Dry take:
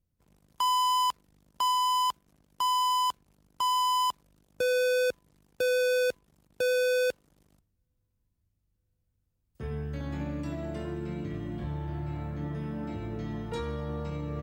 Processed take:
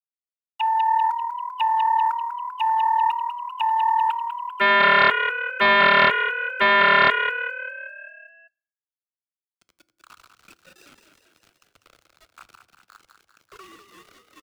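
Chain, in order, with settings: formants replaced by sine waves; in parallel at 0 dB: peak limiter -26.5 dBFS, peak gain reduction 10 dB; on the sum: level rider gain up to 14 dB; two resonant band-passes 2 kHz, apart 0.87 oct; small samples zeroed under -46.5 dBFS; frequency shift -110 Hz; frequency-shifting echo 196 ms, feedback 59%, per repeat +38 Hz, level -8 dB; on a send at -18 dB: reverberation RT60 0.70 s, pre-delay 3 ms; on the sum: loudspeaker Doppler distortion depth 0.32 ms; trim +3.5 dB

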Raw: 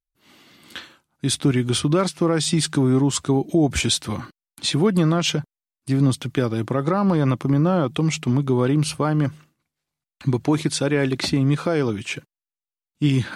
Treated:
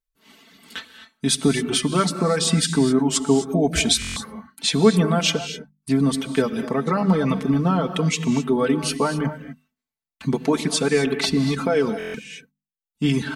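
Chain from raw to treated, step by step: hum notches 50/100/150/200/250 Hz; reverb removal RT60 1.2 s; comb 4.5 ms, depth 85%; gated-style reverb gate 280 ms rising, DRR 9.5 dB; buffer glitch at 4.00/11.98 s, samples 1024, times 6

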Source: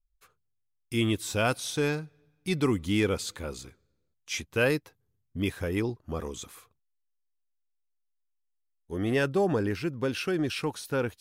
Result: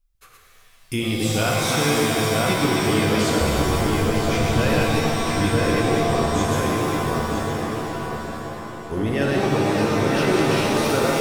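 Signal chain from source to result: chunks repeated in reverse 147 ms, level -3 dB; 3.41–4.64 s: RIAA curve playback; filtered feedback delay 962 ms, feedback 34%, low-pass 2.8 kHz, level -5 dB; compression 2.5:1, threshold -33 dBFS, peak gain reduction 11 dB; pitch-shifted reverb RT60 2.8 s, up +7 st, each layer -2 dB, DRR -0.5 dB; trim +8.5 dB

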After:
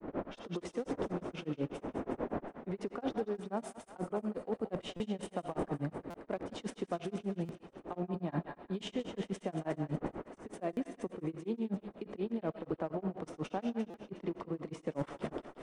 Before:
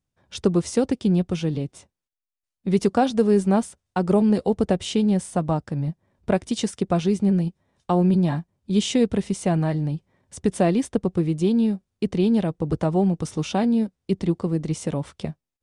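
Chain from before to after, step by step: wind noise 340 Hz -36 dBFS; peak limiter -17 dBFS, peak gain reduction 10 dB; level held to a coarse grid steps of 9 dB; three-band isolator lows -15 dB, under 240 Hz, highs -17 dB, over 2.5 kHz; reverse; compression 5:1, threshold -42 dBFS, peak gain reduction 15 dB; reverse; thinning echo 181 ms, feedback 60%, high-pass 980 Hz, level -5.5 dB; hard clipper -35 dBFS, distortion -27 dB; on a send at -10 dB: reverberation RT60 0.35 s, pre-delay 20 ms; on the sum: granulator 126 ms, grains 8.3 per s, spray 12 ms, pitch spread up and down by 0 st; buffer glitch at 4.96/6.10/7.45/10.73/13.90 s, samples 256, times 6; trim +10.5 dB

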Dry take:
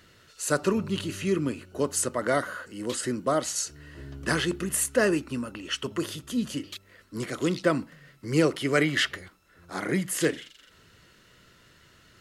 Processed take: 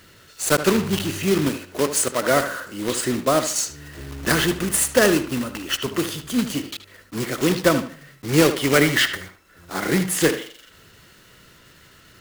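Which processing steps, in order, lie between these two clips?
block-companded coder 3-bit; 1.49–2.31 s: bass shelf 110 Hz -10.5 dB; on a send: tape echo 75 ms, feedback 32%, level -10 dB, low-pass 3.9 kHz; on the sum: trim +6 dB

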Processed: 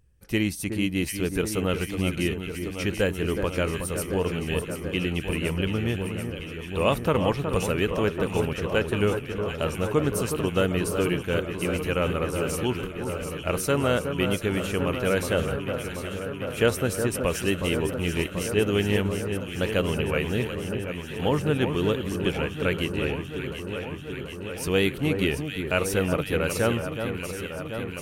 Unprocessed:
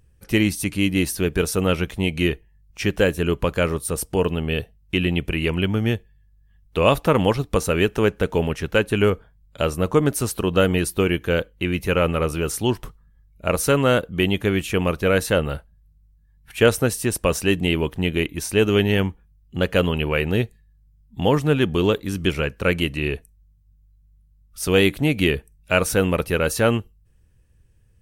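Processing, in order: echo whose repeats swap between lows and highs 368 ms, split 1.6 kHz, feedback 87%, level -7 dB; trim -6 dB

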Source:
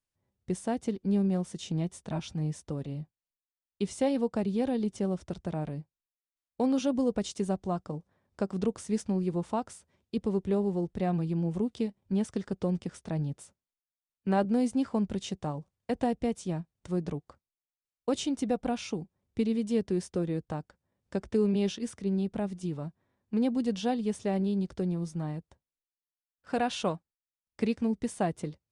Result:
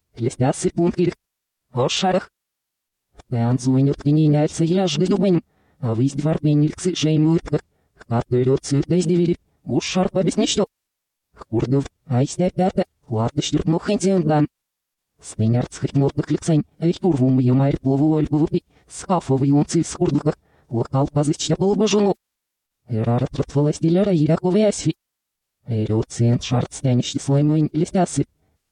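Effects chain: reverse the whole clip; formant-preserving pitch shift -4.5 st; loudness maximiser +24.5 dB; trim -8.5 dB

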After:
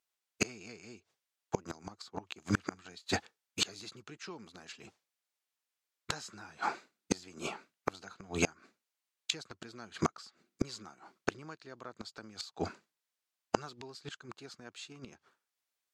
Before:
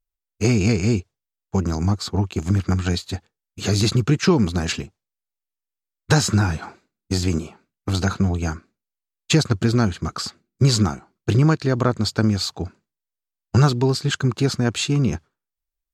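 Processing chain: frequency weighting A; inverted gate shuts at -20 dBFS, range -30 dB; trim +6.5 dB

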